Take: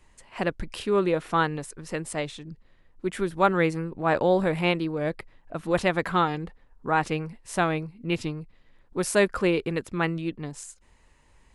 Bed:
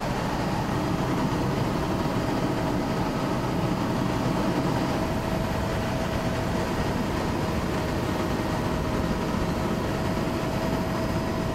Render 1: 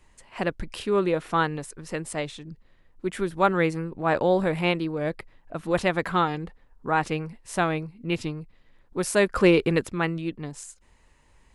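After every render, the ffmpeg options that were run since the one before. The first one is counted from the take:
ffmpeg -i in.wav -filter_complex "[0:a]asplit=3[link_01][link_02][link_03];[link_01]afade=type=out:start_time=9.35:duration=0.02[link_04];[link_02]acontrast=46,afade=type=in:start_time=9.35:duration=0.02,afade=type=out:start_time=9.89:duration=0.02[link_05];[link_03]afade=type=in:start_time=9.89:duration=0.02[link_06];[link_04][link_05][link_06]amix=inputs=3:normalize=0" out.wav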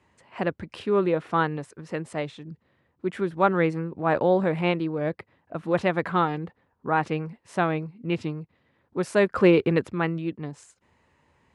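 ffmpeg -i in.wav -af "highpass=frequency=82:width=0.5412,highpass=frequency=82:width=1.3066,aemphasis=mode=reproduction:type=75fm" out.wav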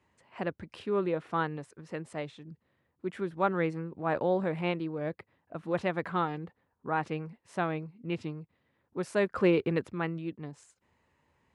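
ffmpeg -i in.wav -af "volume=-7dB" out.wav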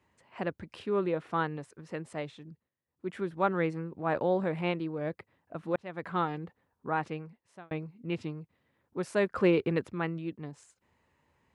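ffmpeg -i in.wav -filter_complex "[0:a]asplit=5[link_01][link_02][link_03][link_04][link_05];[link_01]atrim=end=2.7,asetpts=PTS-STARTPTS,afade=type=out:start_time=2.45:duration=0.25:silence=0.105925[link_06];[link_02]atrim=start=2.7:end=2.86,asetpts=PTS-STARTPTS,volume=-19.5dB[link_07];[link_03]atrim=start=2.86:end=5.76,asetpts=PTS-STARTPTS,afade=type=in:duration=0.25:silence=0.105925,afade=type=out:start_time=2.896:duration=0.004:curve=hsin[link_08];[link_04]atrim=start=5.76:end=7.71,asetpts=PTS-STARTPTS,afade=type=in:duration=0.44,afade=type=out:start_time=1.16:duration=0.79[link_09];[link_05]atrim=start=7.71,asetpts=PTS-STARTPTS,afade=type=in:duration=0.004:curve=hsin[link_10];[link_06][link_07][link_08][link_09][link_10]concat=n=5:v=0:a=1" out.wav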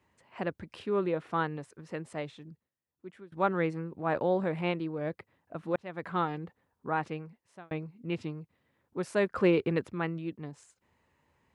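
ffmpeg -i in.wav -filter_complex "[0:a]asplit=2[link_01][link_02];[link_01]atrim=end=3.32,asetpts=PTS-STARTPTS,afade=type=out:start_time=2.47:duration=0.85:silence=0.0707946[link_03];[link_02]atrim=start=3.32,asetpts=PTS-STARTPTS,afade=type=in:duration=0.004:curve=hsin:silence=0.0707946[link_04];[link_03][link_04]concat=n=2:v=0:a=1" out.wav

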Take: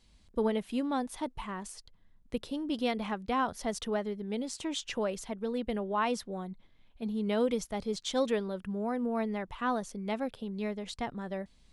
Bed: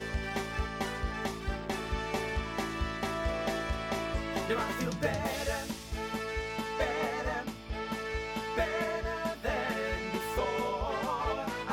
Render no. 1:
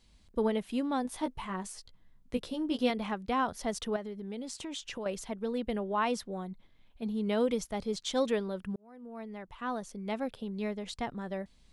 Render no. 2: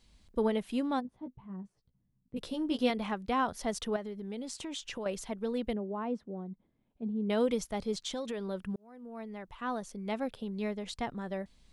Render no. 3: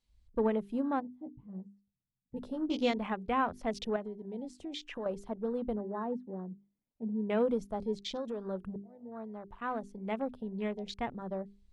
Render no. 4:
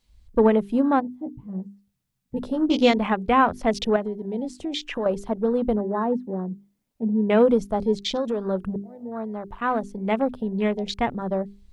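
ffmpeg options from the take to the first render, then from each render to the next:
ffmpeg -i in.wav -filter_complex "[0:a]asettb=1/sr,asplit=3[link_01][link_02][link_03];[link_01]atrim=end=1.034[link_04];[link_02]atrim=start=1.03:end=2.9,asetpts=PTS-STARTPTS,afade=type=in:duration=0.004:curve=qsin,afade=type=out:start_time=1.866:duration=0.004:curve=qsin,asplit=2[link_05][link_06];[link_06]adelay=16,volume=-5dB[link_07];[link_05][link_07]amix=inputs=2:normalize=0,atrim=end_sample=82467[link_08];[link_03]atrim=start=2.896[link_09];[link_04][link_08]acrossfade=duration=0.004:curve1=hsin:curve2=qsin[link_10];[link_10][link_09]acrossfade=duration=0.004:curve1=qsin:curve2=hsin,asettb=1/sr,asplit=3[link_11][link_12][link_13];[link_11]atrim=end=3.964[link_14];[link_12]atrim=start=3.96:end=5.06,asetpts=PTS-STARTPTS,afade=type=in:duration=0.004:curve=qsin,afade=type=out:start_time=1.096:duration=0.004:curve=qsin,acompressor=threshold=-37dB:ratio=3:attack=3.2:release=140:knee=1:detection=peak[link_15];[link_13]atrim=start=5.056[link_16];[link_14][link_15]acrossfade=duration=0.004:curve1=hsin:curve2=qsin[link_17];[link_17][link_16]acrossfade=duration=0.004:curve1=qsin:curve2=hsin,asplit=2[link_18][link_19];[link_18]atrim=end=8.76,asetpts=PTS-STARTPTS,afade=type=out:start_time=8.756:duration=0.004:curve=hsin[link_20];[link_19]atrim=start=8.76,asetpts=PTS-STARTPTS,afade=type=in:duration=1.56[link_21];[link_20][link_21]concat=n=2:v=0:a=1" out.wav
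ffmpeg -i in.wav -filter_complex "[0:a]asplit=3[link_01][link_02][link_03];[link_01]afade=type=out:start_time=0.99:duration=0.02[link_04];[link_02]bandpass=frequency=150:width_type=q:width=1.5,afade=type=in:start_time=0.99:duration=0.02,afade=type=out:start_time=2.36:duration=0.02[link_05];[link_03]afade=type=in:start_time=2.36:duration=0.02[link_06];[link_04][link_05][link_06]amix=inputs=3:normalize=0,asettb=1/sr,asplit=3[link_07][link_08][link_09];[link_07]atrim=end=5.734[link_10];[link_08]atrim=start=5.73:end=7.3,asetpts=PTS-STARTPTS,afade=type=in:duration=0.004:curve=qsin,afade=type=out:start_time=1.566:duration=0.004:curve=qsin,bandpass=frequency=250:width_type=q:width=0.78[link_11];[link_09]atrim=start=7.296[link_12];[link_10][link_11]acrossfade=duration=0.004:curve1=hsin:curve2=qsin[link_13];[link_13][link_12]acrossfade=duration=0.004:curve1=qsin:curve2=hsin,asettb=1/sr,asplit=3[link_14][link_15][link_16];[link_14]atrim=end=8.004[link_17];[link_15]atrim=start=8:end=8.49,asetpts=PTS-STARTPTS,afade=type=in:duration=0.004:curve=qsin,afade=type=out:start_time=0.486:duration=0.004:curve=qsin,acompressor=threshold=-33dB:ratio=6:attack=3.2:release=140:knee=1:detection=peak[link_18];[link_16]atrim=start=8.486[link_19];[link_17][link_18]acrossfade=duration=0.004:curve1=hsin:curve2=qsin[link_20];[link_20][link_19]acrossfade=duration=0.004:curve1=qsin:curve2=hsin" out.wav
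ffmpeg -i in.wav -af "afwtdn=0.00562,bandreject=frequency=50:width_type=h:width=6,bandreject=frequency=100:width_type=h:width=6,bandreject=frequency=150:width_type=h:width=6,bandreject=frequency=200:width_type=h:width=6,bandreject=frequency=250:width_type=h:width=6,bandreject=frequency=300:width_type=h:width=6,bandreject=frequency=350:width_type=h:width=6,bandreject=frequency=400:width_type=h:width=6" out.wav
ffmpeg -i in.wav -af "volume=12dB" out.wav

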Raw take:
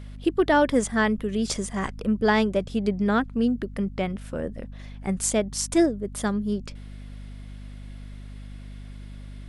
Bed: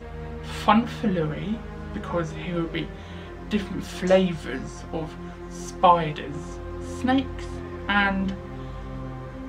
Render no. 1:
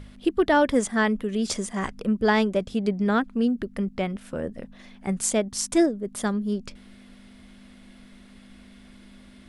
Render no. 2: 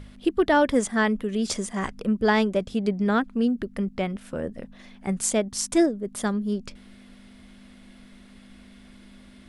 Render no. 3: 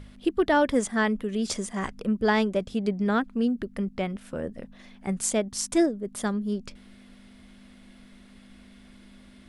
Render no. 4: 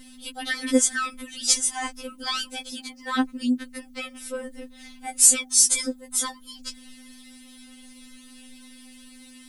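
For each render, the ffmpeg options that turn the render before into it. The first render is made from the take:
ffmpeg -i in.wav -af "bandreject=frequency=50:width_type=h:width=4,bandreject=frequency=100:width_type=h:width=4,bandreject=frequency=150:width_type=h:width=4" out.wav
ffmpeg -i in.wav -af anull out.wav
ffmpeg -i in.wav -af "volume=-2dB" out.wav
ffmpeg -i in.wav -af "crystalizer=i=6.5:c=0,afftfilt=real='re*3.46*eq(mod(b,12),0)':imag='im*3.46*eq(mod(b,12),0)':win_size=2048:overlap=0.75" out.wav

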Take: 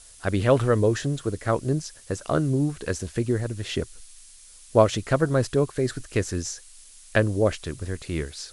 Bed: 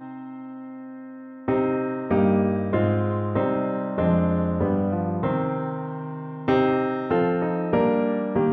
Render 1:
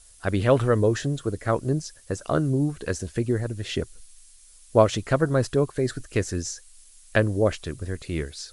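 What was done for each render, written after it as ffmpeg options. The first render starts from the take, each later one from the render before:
ffmpeg -i in.wav -af "afftdn=noise_reduction=6:noise_floor=-49" out.wav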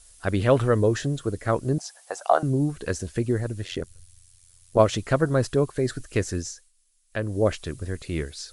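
ffmpeg -i in.wav -filter_complex "[0:a]asettb=1/sr,asplit=3[link_01][link_02][link_03];[link_01]atrim=end=1.784[link_04];[link_02]atrim=start=1.78:end=2.43,asetpts=PTS-STARTPTS,afade=type=in:duration=0.004:curve=qsin,afade=type=out:start_time=0.646:duration=0.004:curve=qsin,highpass=frequency=760:width_type=q:width=6.7[link_05];[link_03]atrim=start=2.426[link_06];[link_04][link_05]acrossfade=duration=0.004:curve1=hsin:curve2=qsin[link_07];[link_07][link_06]acrossfade=duration=0.004:curve1=qsin:curve2=hsin,asplit=3[link_08][link_09][link_10];[link_08]afade=type=out:start_time=3.63:duration=0.02[link_11];[link_09]tremolo=f=88:d=0.889,afade=type=in:start_time=3.63:duration=0.02,afade=type=out:start_time=4.78:duration=0.02[link_12];[link_10]afade=type=in:start_time=4.78:duration=0.02[link_13];[link_11][link_12][link_13]amix=inputs=3:normalize=0,asplit=3[link_14][link_15][link_16];[link_14]atrim=end=6.72,asetpts=PTS-STARTPTS,afade=type=out:start_time=6.36:duration=0.36:silence=0.158489[link_17];[link_15]atrim=start=6.72:end=7.09,asetpts=PTS-STARTPTS,volume=-16dB[link_18];[link_16]atrim=start=7.09,asetpts=PTS-STARTPTS,afade=type=in:duration=0.36:silence=0.158489[link_19];[link_17][link_18][link_19]concat=n=3:v=0:a=1" out.wav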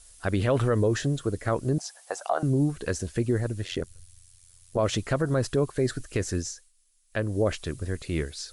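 ffmpeg -i in.wav -af "alimiter=limit=-15dB:level=0:latency=1:release=53" out.wav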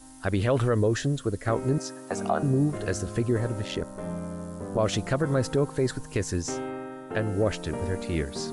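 ffmpeg -i in.wav -i bed.wav -filter_complex "[1:a]volume=-13.5dB[link_01];[0:a][link_01]amix=inputs=2:normalize=0" out.wav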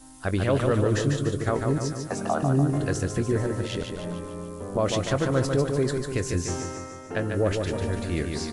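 ffmpeg -i in.wav -filter_complex "[0:a]asplit=2[link_01][link_02];[link_02]adelay=22,volume=-14dB[link_03];[link_01][link_03]amix=inputs=2:normalize=0,aecho=1:1:147|294|441|588|735|882|1029:0.562|0.304|0.164|0.0885|0.0478|0.0258|0.0139" out.wav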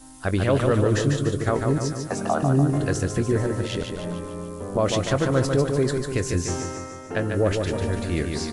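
ffmpeg -i in.wav -af "volume=2.5dB" out.wav

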